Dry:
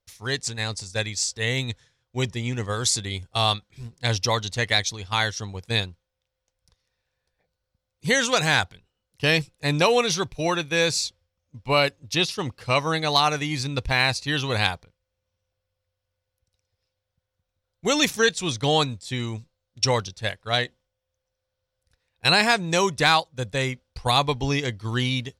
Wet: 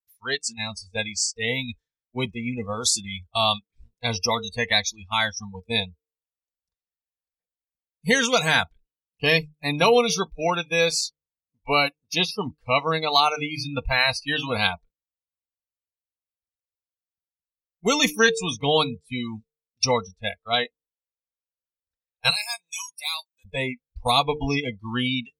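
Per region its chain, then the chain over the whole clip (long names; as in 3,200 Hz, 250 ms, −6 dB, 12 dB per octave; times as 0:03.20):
0:22.30–0:23.45: first difference + notch filter 1,400 Hz, Q 8.6
whole clip: hum removal 150.5 Hz, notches 3; noise reduction from a noise print of the clip's start 29 dB; comb filter 4.4 ms, depth 52%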